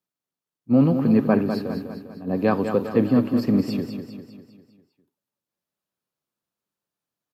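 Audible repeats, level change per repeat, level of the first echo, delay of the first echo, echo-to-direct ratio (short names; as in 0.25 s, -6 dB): 5, -6.0 dB, -8.0 dB, 0.2 s, -6.5 dB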